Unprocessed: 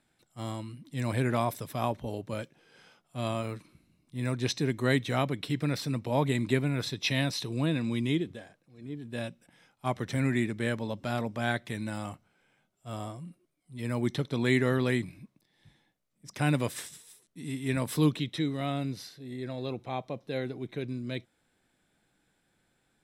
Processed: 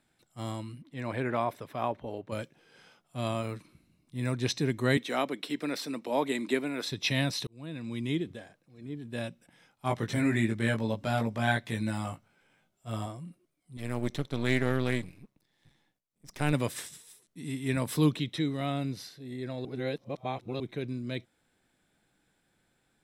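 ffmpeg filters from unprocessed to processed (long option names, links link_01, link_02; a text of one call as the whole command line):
ffmpeg -i in.wav -filter_complex "[0:a]asettb=1/sr,asplit=3[link_01][link_02][link_03];[link_01]atrim=end=0.824[link_04];[link_02]atrim=start=0.82:end=2.32,asetpts=PTS-STARTPTS,afade=type=in:duration=0.004:curve=qsin,afade=type=out:start_time=1.496:duration=0.004:curve=qsin,bass=frequency=250:gain=-8,treble=frequency=4000:gain=-15[link_05];[link_03]atrim=start=2.316[link_06];[link_04][link_05]acrossfade=duration=0.004:curve1=hsin:curve2=qsin[link_07];[link_07][link_06]acrossfade=duration=0.004:curve1=qsin:curve2=hsin,asettb=1/sr,asplit=3[link_08][link_09][link_10];[link_08]atrim=end=4.974[link_11];[link_09]atrim=start=4.97:end=6.92,asetpts=PTS-STARTPTS,afade=type=in:duration=0.004:curve=qsin,afade=type=out:start_time=1.946:duration=0.004:curve=qsin,highpass=frequency=240:width=0.5412,highpass=frequency=240:width=1.3066[link_12];[link_10]atrim=start=6.916[link_13];[link_11][link_12]acrossfade=duration=0.004:curve1=hsin:curve2=qsin[link_14];[link_14][link_13]acrossfade=duration=0.004:curve1=qsin:curve2=hsin,asettb=1/sr,asplit=3[link_15][link_16][link_17];[link_15]atrim=end=9.884[link_18];[link_16]atrim=start=9.88:end=13.06,asetpts=PTS-STARTPTS,afade=type=in:duration=0.004:curve=qsin,afade=type=out:start_time=3.176:duration=0.004:curve=qsin,asplit=2[link_19][link_20];[link_20]adelay=18,volume=-3dB[link_21];[link_19][link_21]amix=inputs=2:normalize=0,atrim=end_sample=140238[link_22];[link_17]atrim=start=13.056[link_23];[link_18][link_22]acrossfade=duration=0.004:curve1=hsin:curve2=qsin[link_24];[link_24][link_23]acrossfade=duration=0.004:curve1=qsin:curve2=hsin,asettb=1/sr,asplit=3[link_25][link_26][link_27];[link_25]atrim=end=13.774[link_28];[link_26]atrim=start=13.77:end=16.53,asetpts=PTS-STARTPTS,afade=type=in:duration=0.004:curve=qsin,afade=type=out:start_time=2.756:duration=0.004:curve=qsin,aeval=exprs='if(lt(val(0),0),0.251*val(0),val(0))':channel_layout=same[link_29];[link_27]atrim=start=16.526[link_30];[link_28][link_29]acrossfade=duration=0.004:curve1=hsin:curve2=qsin[link_31];[link_31][link_30]acrossfade=duration=0.004:curve1=qsin:curve2=hsin,asplit=4[link_32][link_33][link_34][link_35];[link_32]atrim=end=7.47,asetpts=PTS-STARTPTS,afade=type=out:start_time=7.466:duration=0.004:curve=hsin[link_36];[link_33]atrim=start=7.47:end=19.652,asetpts=PTS-STARTPTS,afade=type=in:duration=0.88[link_37];[link_34]atrim=start=19.648:end=20.602,asetpts=PTS-STARTPTS,areverse[link_38];[link_35]atrim=start=20.598[link_39];[link_36][link_37]concat=n=2:v=0:a=1[link_40];[link_40][link_38]acrossfade=duration=0.004:curve1=hsin:curve2=hsin[link_41];[link_41][link_39]acrossfade=duration=0.004:curve1=hsin:curve2=hsin" out.wav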